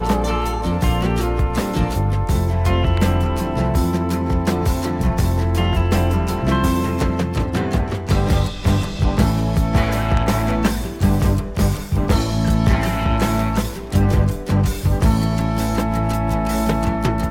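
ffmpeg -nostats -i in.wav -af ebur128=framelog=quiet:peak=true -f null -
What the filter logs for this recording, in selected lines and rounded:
Integrated loudness:
  I:         -19.3 LUFS
  Threshold: -29.3 LUFS
Loudness range:
  LRA:         0.7 LU
  Threshold: -39.2 LUFS
  LRA low:   -19.5 LUFS
  LRA high:  -18.8 LUFS
True peak:
  Peak:       -2.9 dBFS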